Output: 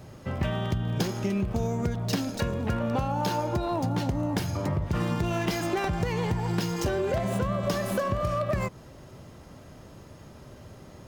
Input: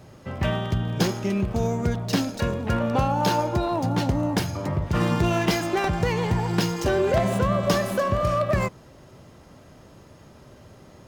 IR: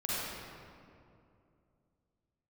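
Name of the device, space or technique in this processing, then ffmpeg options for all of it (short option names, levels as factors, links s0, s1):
ASMR close-microphone chain: -af "lowshelf=f=150:g=3.5,acompressor=threshold=0.0631:ratio=6,highshelf=f=11000:g=3.5"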